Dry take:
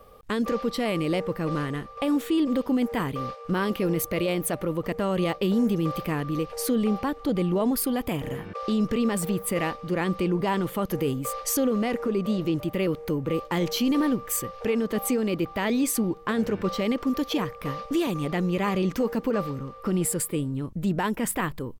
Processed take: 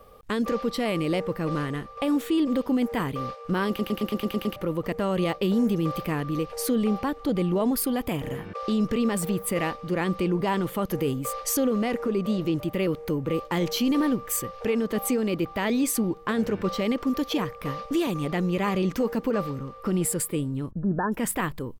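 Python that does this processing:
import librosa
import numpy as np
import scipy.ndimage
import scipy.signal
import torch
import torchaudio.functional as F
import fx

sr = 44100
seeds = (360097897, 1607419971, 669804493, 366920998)

y = fx.brickwall_lowpass(x, sr, high_hz=1800.0, at=(20.71, 21.12))
y = fx.edit(y, sr, fx.stutter_over(start_s=3.68, slice_s=0.11, count=8), tone=tone)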